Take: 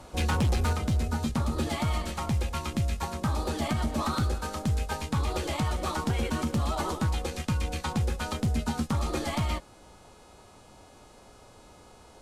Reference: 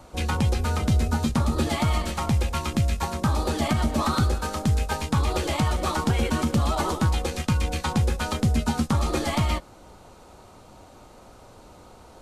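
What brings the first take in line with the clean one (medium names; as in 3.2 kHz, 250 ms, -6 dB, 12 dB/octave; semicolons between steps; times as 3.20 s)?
clip repair -21 dBFS; de-hum 421.1 Hz, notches 24; trim 0 dB, from 0.73 s +5 dB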